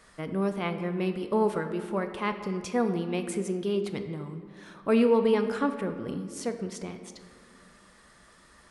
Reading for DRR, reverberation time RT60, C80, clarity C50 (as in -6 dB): 7.0 dB, 2.0 s, 10.5 dB, 9.0 dB